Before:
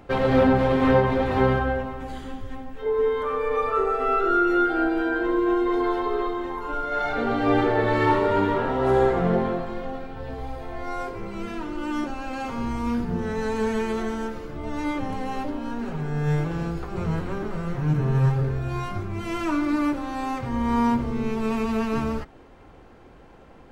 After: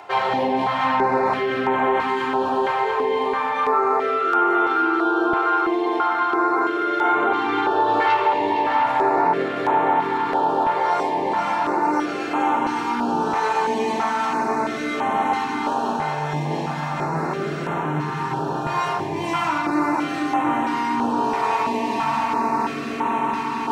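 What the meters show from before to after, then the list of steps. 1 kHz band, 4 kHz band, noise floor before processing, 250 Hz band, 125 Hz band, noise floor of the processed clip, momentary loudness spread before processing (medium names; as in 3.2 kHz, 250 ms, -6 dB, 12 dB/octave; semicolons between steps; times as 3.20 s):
+9.0 dB, +7.0 dB, -48 dBFS, 0.0 dB, -6.5 dB, -27 dBFS, 13 LU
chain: multi-head delay 231 ms, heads second and third, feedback 75%, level -7 dB; in parallel at 0 dB: peak limiter -18 dBFS, peak gain reduction 11.5 dB; on the sum: high-pass 110 Hz 12 dB/octave; peaking EQ 890 Hz +13 dB 0.25 oct; saturation -4.5 dBFS, distortion -21 dB; simulated room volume 2000 m³, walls furnished, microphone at 3.2 m; reverse; upward compressor, threshold -10 dBFS; reverse; frequency weighting A; compression, threshold -11 dBFS, peak gain reduction 4.5 dB; step-sequenced notch 3 Hz 260–4800 Hz; trim -2.5 dB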